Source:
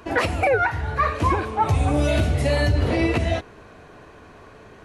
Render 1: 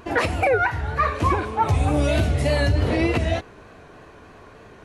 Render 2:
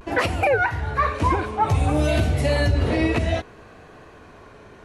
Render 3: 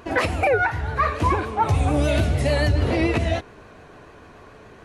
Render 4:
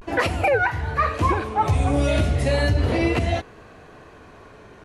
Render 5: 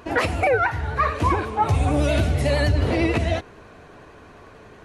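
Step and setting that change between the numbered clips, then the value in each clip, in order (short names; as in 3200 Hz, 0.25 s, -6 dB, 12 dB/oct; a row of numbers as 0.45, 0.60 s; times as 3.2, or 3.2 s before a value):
vibrato, rate: 3.3, 0.59, 6.9, 0.35, 11 Hz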